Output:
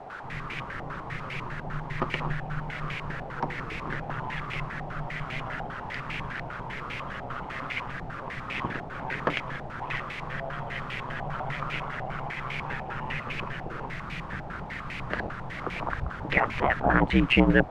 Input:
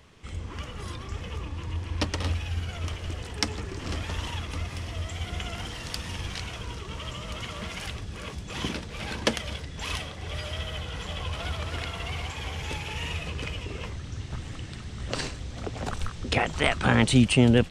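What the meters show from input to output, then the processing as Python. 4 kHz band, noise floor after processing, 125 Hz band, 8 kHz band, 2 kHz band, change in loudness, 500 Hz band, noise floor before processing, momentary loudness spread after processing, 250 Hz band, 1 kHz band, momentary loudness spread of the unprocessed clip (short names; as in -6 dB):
-6.5 dB, -39 dBFS, -4.0 dB, -19.0 dB, +3.5 dB, -0.5 dB, 0.0 dB, -40 dBFS, 11 LU, -2.0 dB, +5.0 dB, 13 LU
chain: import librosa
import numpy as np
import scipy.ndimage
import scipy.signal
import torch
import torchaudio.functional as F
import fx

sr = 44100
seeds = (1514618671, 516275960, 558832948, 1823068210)

y = x * np.sin(2.0 * np.pi * 65.0 * np.arange(len(x)) / sr)
y = fx.quant_dither(y, sr, seeds[0], bits=6, dither='triangular')
y = fx.filter_held_lowpass(y, sr, hz=10.0, low_hz=760.0, high_hz=2300.0)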